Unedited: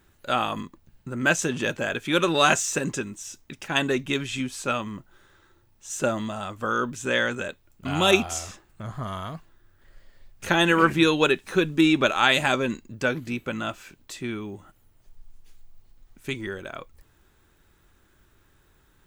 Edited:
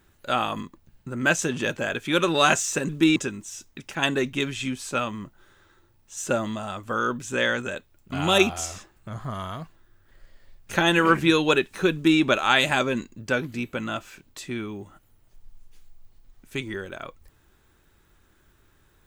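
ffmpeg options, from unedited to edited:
ffmpeg -i in.wav -filter_complex "[0:a]asplit=3[link_01][link_02][link_03];[link_01]atrim=end=2.892[link_04];[link_02]atrim=start=11.658:end=11.932[link_05];[link_03]atrim=start=2.888[link_06];[link_04][link_05]acrossfade=duration=0.004:curve1=hsin:curve2=hsin[link_07];[link_07][link_06]acrossfade=duration=0.004:curve1=hsin:curve2=hsin" out.wav

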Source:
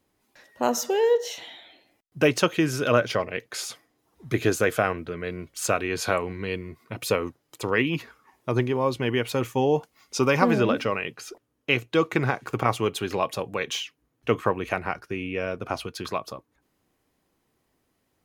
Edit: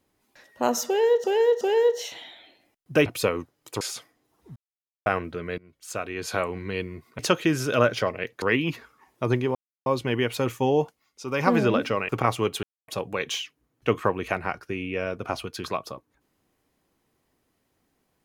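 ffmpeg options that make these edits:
ffmpeg -i in.wav -filter_complex "[0:a]asplit=16[link_01][link_02][link_03][link_04][link_05][link_06][link_07][link_08][link_09][link_10][link_11][link_12][link_13][link_14][link_15][link_16];[link_01]atrim=end=1.242[link_17];[link_02]atrim=start=0.868:end=1.242[link_18];[link_03]atrim=start=0.868:end=2.322[link_19];[link_04]atrim=start=6.928:end=7.682[link_20];[link_05]atrim=start=3.548:end=4.3,asetpts=PTS-STARTPTS,afade=type=out:start_time=0.748:duration=0.004:curve=hsin[link_21];[link_06]atrim=start=4.3:end=4.8,asetpts=PTS-STARTPTS,volume=0[link_22];[link_07]atrim=start=4.8:end=5.32,asetpts=PTS-STARTPTS,afade=type=in:duration=0.004:curve=hsin,afade=type=out:start_time=0.516:duration=0.004:curve=hsin:silence=0.0668344[link_23];[link_08]atrim=start=5.32:end=6.932,asetpts=PTS-STARTPTS,afade=type=in:duration=1.07:silence=0.0668344[link_24];[link_09]atrim=start=2.318:end=3.552[link_25];[link_10]atrim=start=7.678:end=8.81,asetpts=PTS-STARTPTS,afade=type=out:start_time=1.128:duration=0.004:curve=hsin,apad=pad_dur=0.31[link_26];[link_11]atrim=start=8.81:end=10,asetpts=PTS-STARTPTS,afade=type=in:duration=0.004:curve=hsin,afade=type=out:start_time=0.94:duration=0.25:silence=0.237137[link_27];[link_12]atrim=start=10:end=10.21,asetpts=PTS-STARTPTS,volume=-12.5dB[link_28];[link_13]atrim=start=10.21:end=11.042,asetpts=PTS-STARTPTS,afade=type=in:duration=0.25:silence=0.237137[link_29];[link_14]atrim=start=12.498:end=13.04,asetpts=PTS-STARTPTS,afade=type=out:start_time=0.538:duration=0.004:curve=hsin[link_30];[link_15]atrim=start=13.04:end=13.29,asetpts=PTS-STARTPTS,volume=0[link_31];[link_16]atrim=start=13.29,asetpts=PTS-STARTPTS,afade=type=in:duration=0.004:curve=hsin[link_32];[link_17][link_18]acrossfade=duration=0.004:curve1=hsin:curve2=hsin[link_33];[link_33][link_19]acrossfade=duration=0.004:curve1=hsin:curve2=hsin[link_34];[link_34][link_20]acrossfade=duration=0.004:curve1=hsin:curve2=hsin[link_35];[link_21][link_22][link_23][link_24]concat=n=4:v=0:a=1[link_36];[link_35][link_36]acrossfade=duration=0.004:curve1=hsin:curve2=hsin[link_37];[link_37][link_25]acrossfade=duration=0.004:curve1=hsin:curve2=hsin[link_38];[link_26][link_27][link_28][link_29]concat=n=4:v=0:a=1[link_39];[link_38][link_39]acrossfade=duration=0.004:curve1=hsin:curve2=hsin[link_40];[link_30][link_31][link_32]concat=n=3:v=0:a=1[link_41];[link_40][link_41]acrossfade=duration=0.004:curve1=hsin:curve2=hsin" out.wav

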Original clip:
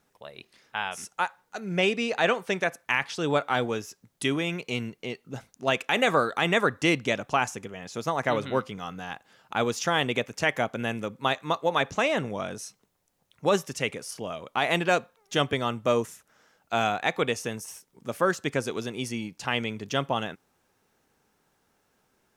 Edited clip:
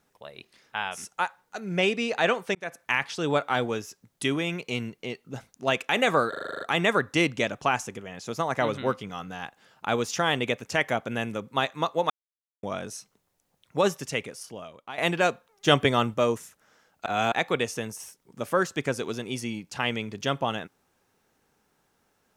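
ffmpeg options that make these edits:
ffmpeg -i in.wav -filter_complex "[0:a]asplit=17[link_01][link_02][link_03][link_04][link_05][link_06][link_07][link_08][link_09][link_10][link_11][link_12][link_13][link_14][link_15][link_16][link_17];[link_01]atrim=end=2.55,asetpts=PTS-STARTPTS,afade=type=out:start_time=2.546:duration=0.004:curve=hsin[link_18];[link_02]atrim=start=2.55:end=6.332,asetpts=PTS-STARTPTS,afade=type=in:duration=0.28[link_19];[link_03]atrim=start=6.288:end=6.332[link_20];[link_04]atrim=start=6.288:end=6.332[link_21];[link_05]atrim=start=6.288:end=6.332[link_22];[link_06]atrim=start=6.288:end=6.332[link_23];[link_07]atrim=start=6.288:end=6.332[link_24];[link_08]atrim=start=6.288:end=6.332[link_25];[link_09]atrim=start=6.288:end=6.332[link_26];[link_10]atrim=start=6.288:end=11.78,asetpts=PTS-STARTPTS,afade=type=out:start_time=5.488:duration=0.004:curve=hsin[link_27];[link_11]atrim=start=11.78:end=12.31,asetpts=PTS-STARTPTS,volume=0[link_28];[link_12]atrim=start=12.31:end=14.66,asetpts=PTS-STARTPTS,afade=type=in:duration=0.004:curve=hsin,afade=type=out:start_time=1.4:duration=0.95:silence=0.177828[link_29];[link_13]atrim=start=14.66:end=15.352,asetpts=PTS-STARTPTS,afade=type=in:duration=0.004:curve=hsin:silence=0.177828[link_30];[link_14]atrim=start=15.348:end=15.822,asetpts=PTS-STARTPTS,volume=5dB[link_31];[link_15]atrim=start=15.818:end=16.742[link_32];[link_16]atrim=start=16.738:end=17.002,asetpts=PTS-STARTPTS,areverse[link_33];[link_17]atrim=start=16.998[link_34];[link_18][link_19]concat=n=2:v=0:a=1[link_35];[link_35][link_20]acrossfade=duration=0.004:curve1=hsin:curve2=hsin[link_36];[link_36][link_21]acrossfade=duration=0.004:curve1=hsin:curve2=hsin[link_37];[link_37][link_22]acrossfade=duration=0.004:curve1=hsin:curve2=hsin[link_38];[link_38][link_23]acrossfade=duration=0.004:curve1=hsin:curve2=hsin[link_39];[link_39][link_24]acrossfade=duration=0.004:curve1=hsin:curve2=hsin[link_40];[link_40][link_25]acrossfade=duration=0.004:curve1=hsin:curve2=hsin[link_41];[link_41][link_26]acrossfade=duration=0.004:curve1=hsin:curve2=hsin[link_42];[link_27][link_28][link_29][link_30]concat=n=4:v=0:a=1[link_43];[link_42][link_43]acrossfade=duration=0.004:curve1=hsin:curve2=hsin[link_44];[link_44][link_31]acrossfade=duration=0.004:curve1=hsin:curve2=hsin[link_45];[link_45][link_32]acrossfade=duration=0.004:curve1=hsin:curve2=hsin[link_46];[link_46][link_33]acrossfade=duration=0.004:curve1=hsin:curve2=hsin[link_47];[link_47][link_34]acrossfade=duration=0.004:curve1=hsin:curve2=hsin" out.wav

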